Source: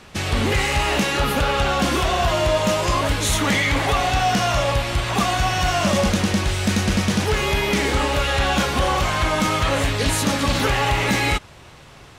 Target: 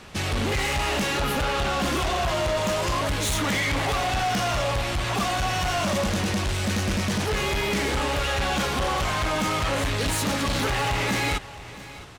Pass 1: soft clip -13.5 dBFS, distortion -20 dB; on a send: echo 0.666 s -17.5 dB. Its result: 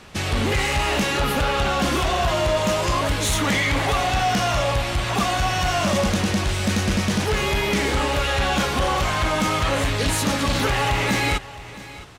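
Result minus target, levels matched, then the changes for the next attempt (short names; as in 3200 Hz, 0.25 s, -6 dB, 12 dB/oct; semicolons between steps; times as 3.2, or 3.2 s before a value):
soft clip: distortion -9 dB
change: soft clip -21.5 dBFS, distortion -10 dB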